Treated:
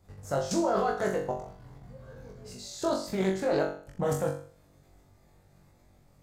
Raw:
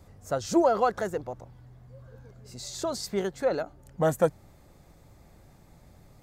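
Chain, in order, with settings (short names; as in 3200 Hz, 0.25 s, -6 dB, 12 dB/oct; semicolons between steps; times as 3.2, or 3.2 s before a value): level quantiser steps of 17 dB; flutter echo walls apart 3.6 m, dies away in 0.47 s; Doppler distortion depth 0.19 ms; gain +5 dB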